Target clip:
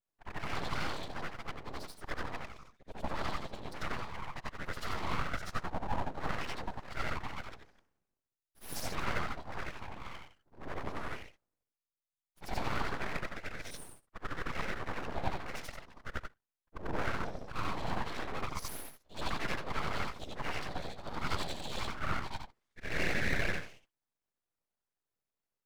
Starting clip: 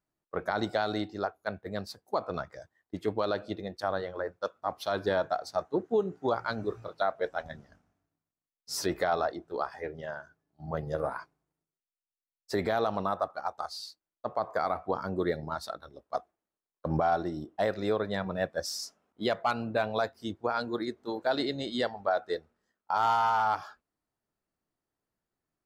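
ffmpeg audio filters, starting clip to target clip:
ffmpeg -i in.wav -af "afftfilt=real='re':imag='-im':win_size=8192:overlap=0.75,afftfilt=real='hypot(re,im)*cos(2*PI*random(0))':imag='hypot(re,im)*sin(2*PI*random(1))':win_size=512:overlap=0.75,aeval=exprs='abs(val(0))':channel_layout=same,volume=7dB" out.wav

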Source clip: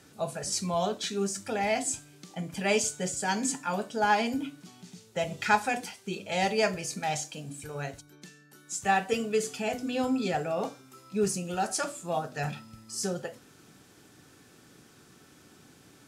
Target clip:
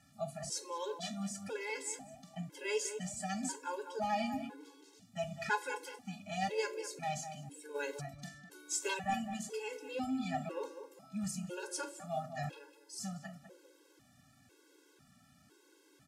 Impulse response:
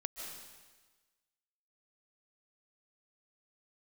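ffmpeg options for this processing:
-filter_complex "[0:a]asplit=3[link_01][link_02][link_03];[link_01]afade=type=out:start_time=7.74:duration=0.02[link_04];[link_02]aeval=exprs='0.266*sin(PI/2*1.78*val(0)/0.266)':channel_layout=same,afade=type=in:start_time=7.74:duration=0.02,afade=type=out:start_time=8.93:duration=0.02[link_05];[link_03]afade=type=in:start_time=8.93:duration=0.02[link_06];[link_04][link_05][link_06]amix=inputs=3:normalize=0,asplit=2[link_07][link_08];[link_08]adelay=201,lowpass=frequency=1400:poles=1,volume=-8dB,asplit=2[link_09][link_10];[link_10]adelay=201,lowpass=frequency=1400:poles=1,volume=0.32,asplit=2[link_11][link_12];[link_12]adelay=201,lowpass=frequency=1400:poles=1,volume=0.32,asplit=2[link_13][link_14];[link_14]adelay=201,lowpass=frequency=1400:poles=1,volume=0.32[link_15];[link_07][link_09][link_11][link_13][link_15]amix=inputs=5:normalize=0,afftfilt=real='re*gt(sin(2*PI*1*pts/sr)*(1-2*mod(floor(b*sr/1024/280),2)),0)':imag='im*gt(sin(2*PI*1*pts/sr)*(1-2*mod(floor(b*sr/1024/280),2)),0)':win_size=1024:overlap=0.75,volume=-6.5dB"

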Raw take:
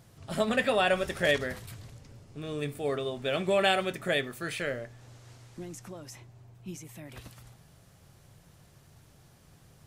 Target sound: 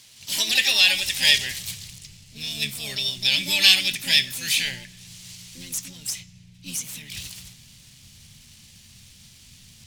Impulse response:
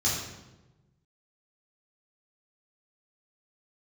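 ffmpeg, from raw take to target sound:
-filter_complex "[0:a]asubboost=boost=8.5:cutoff=160,aexciter=amount=13.9:drive=9.7:freq=2000,adynamicsmooth=sensitivity=7:basefreq=3300,asplit=2[link_01][link_02];[link_02]asetrate=66075,aresample=44100,atempo=0.66742,volume=-3dB[link_03];[link_01][link_03]amix=inputs=2:normalize=0,asplit=2[link_04][link_05];[1:a]atrim=start_sample=2205[link_06];[link_05][link_06]afir=irnorm=-1:irlink=0,volume=-28.5dB[link_07];[link_04][link_07]amix=inputs=2:normalize=0,volume=-12.5dB"

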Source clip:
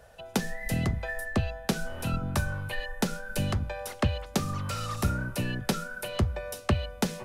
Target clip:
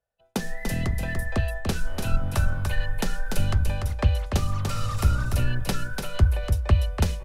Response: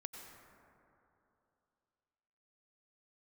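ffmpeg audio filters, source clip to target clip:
-filter_complex "[0:a]asubboost=boost=6:cutoff=81,agate=range=-33dB:threshold=-30dB:ratio=3:detection=peak,asplit=2[link_01][link_02];[link_02]asoftclip=type=tanh:threshold=-18.5dB,volume=-10dB[link_03];[link_01][link_03]amix=inputs=2:normalize=0,aecho=1:1:292:0.562,volume=-1.5dB"

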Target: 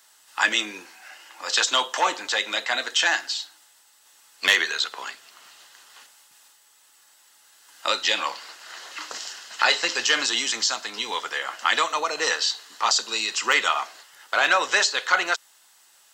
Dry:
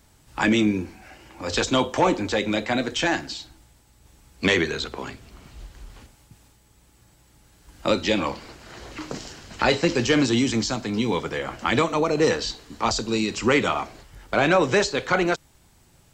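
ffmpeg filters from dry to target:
ffmpeg -i in.wav -af "highpass=1200,bandreject=frequency=2300:width=7.4,aeval=exprs='0.251*(abs(mod(val(0)/0.251+3,4)-2)-1)':channel_layout=same,volume=6dB" out.wav

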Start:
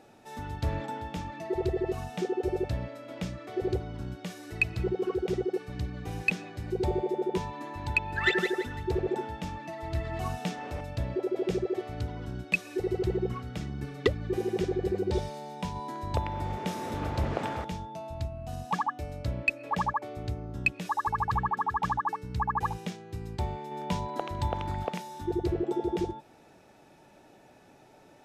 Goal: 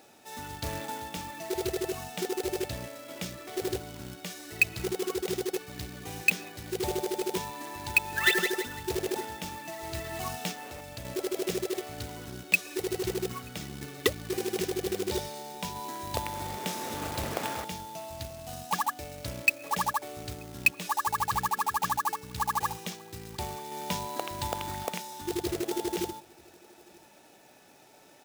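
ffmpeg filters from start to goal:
ffmpeg -i in.wav -filter_complex "[0:a]lowshelf=frequency=120:gain=-11,asplit=2[link_01][link_02];[link_02]adelay=932.9,volume=-25dB,highshelf=frequency=4000:gain=-21[link_03];[link_01][link_03]amix=inputs=2:normalize=0,acrusher=bits=3:mode=log:mix=0:aa=0.000001,highshelf=frequency=2600:gain=9.5,asettb=1/sr,asplit=3[link_04][link_05][link_06];[link_04]atrim=end=10.514[link_07];[link_05]atrim=start=10.51:end=11.05,asetpts=PTS-STARTPTS,afade=type=in:duration=0.004:curve=qsin,afade=type=out:start_time=0.536:duration=0.004:curve=qsin,acompressor=threshold=-38dB:ratio=2.5[link_08];[link_06]atrim=start=11.046[link_09];[link_07][link_08]acrossfade=duration=0.004:curve1=hsin:curve2=qsin[link_10];[link_10][link_09]acrossfade=duration=0.004:curve1=qsin:curve2=hsin,volume=-1.5dB" out.wav

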